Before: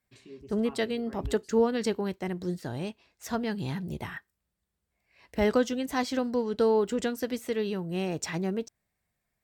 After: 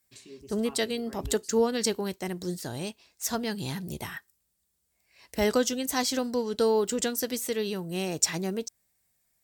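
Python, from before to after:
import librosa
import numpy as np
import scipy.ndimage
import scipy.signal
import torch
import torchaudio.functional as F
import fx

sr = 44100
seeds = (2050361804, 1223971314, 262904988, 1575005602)

y = fx.bass_treble(x, sr, bass_db=-2, treble_db=14)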